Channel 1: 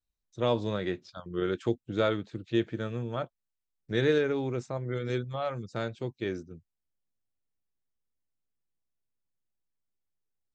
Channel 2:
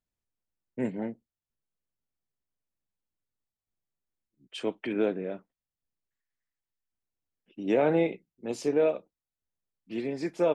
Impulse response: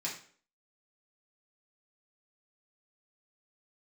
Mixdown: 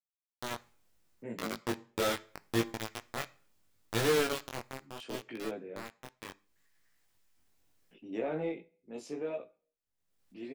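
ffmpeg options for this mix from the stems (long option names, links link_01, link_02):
-filter_complex "[0:a]dynaudnorm=framelen=990:gausssize=3:maxgain=8dB,aeval=exprs='val(0)*gte(abs(val(0)),0.15)':channel_layout=same,volume=-2dB,afade=type=out:start_time=4.23:duration=0.65:silence=0.281838,asplit=3[link_01][link_02][link_03];[link_02]volume=-19.5dB[link_04];[1:a]acompressor=mode=upward:threshold=-39dB:ratio=2.5,adelay=450,volume=-1dB,asplit=2[link_05][link_06];[link_06]volume=-22.5dB[link_07];[link_03]apad=whole_len=484702[link_08];[link_05][link_08]sidechaingate=range=-7dB:threshold=-30dB:ratio=16:detection=peak[link_09];[2:a]atrim=start_sample=2205[link_10];[link_04][link_07]amix=inputs=2:normalize=0[link_11];[link_11][link_10]afir=irnorm=-1:irlink=0[link_12];[link_01][link_09][link_12]amix=inputs=3:normalize=0,asoftclip=type=tanh:threshold=-19.5dB,flanger=delay=17.5:depth=4.9:speed=0.74"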